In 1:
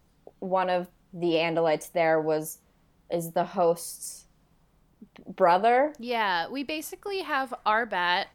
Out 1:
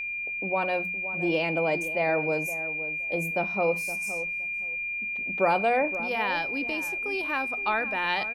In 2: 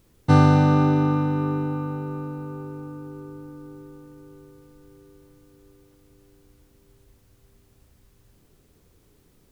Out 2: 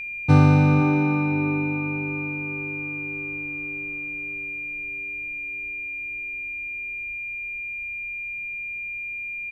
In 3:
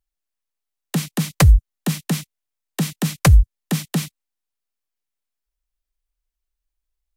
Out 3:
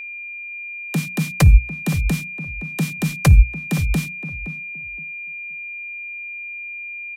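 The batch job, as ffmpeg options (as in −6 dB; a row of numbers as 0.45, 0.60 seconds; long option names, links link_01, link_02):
-filter_complex "[0:a]lowshelf=frequency=280:gain=6.5,bandreject=frequency=60:width_type=h:width=6,bandreject=frequency=120:width_type=h:width=6,bandreject=frequency=180:width_type=h:width=6,bandreject=frequency=240:width_type=h:width=6,aeval=exprs='val(0)+0.0501*sin(2*PI*2400*n/s)':channel_layout=same,asplit=2[link_01][link_02];[link_02]adelay=517,lowpass=frequency=940:poles=1,volume=-11.5dB,asplit=2[link_03][link_04];[link_04]adelay=517,lowpass=frequency=940:poles=1,volume=0.2,asplit=2[link_05][link_06];[link_06]adelay=517,lowpass=frequency=940:poles=1,volume=0.2[link_07];[link_03][link_05][link_07]amix=inputs=3:normalize=0[link_08];[link_01][link_08]amix=inputs=2:normalize=0,volume=-4dB"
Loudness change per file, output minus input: −0.5, −3.5, −2.0 LU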